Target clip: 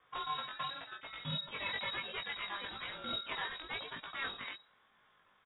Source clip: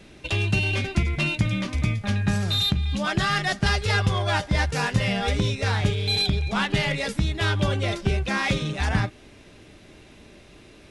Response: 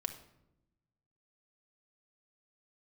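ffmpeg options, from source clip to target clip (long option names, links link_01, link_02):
-af "aderivative,aeval=exprs='0.0944*(cos(1*acos(clip(val(0)/0.0944,-1,1)))-cos(1*PI/2))+0.00596*(cos(5*acos(clip(val(0)/0.0944,-1,1)))-cos(5*PI/2))+0.0133*(cos(6*acos(clip(val(0)/0.0944,-1,1)))-cos(6*PI/2))+0.00596*(cos(7*acos(clip(val(0)/0.0944,-1,1)))-cos(7*PI/2))':channel_layout=same,atempo=2,lowpass=frequency=3200:width_type=q:width=0.5098,lowpass=frequency=3200:width_type=q:width=0.6013,lowpass=frequency=3200:width_type=q:width=0.9,lowpass=frequency=3200:width_type=q:width=2.563,afreqshift=-3800,flanger=delay=17.5:depth=3.4:speed=1,volume=2dB"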